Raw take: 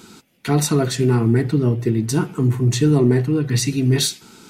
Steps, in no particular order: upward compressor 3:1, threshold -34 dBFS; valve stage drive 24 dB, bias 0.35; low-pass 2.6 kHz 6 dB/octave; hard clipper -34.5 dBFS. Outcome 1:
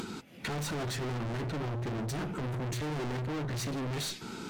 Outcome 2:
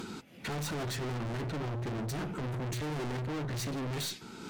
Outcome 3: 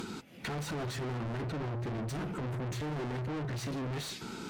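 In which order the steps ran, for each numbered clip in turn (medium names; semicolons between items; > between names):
valve stage > low-pass > hard clipper > upward compressor; upward compressor > low-pass > valve stage > hard clipper; hard clipper > low-pass > upward compressor > valve stage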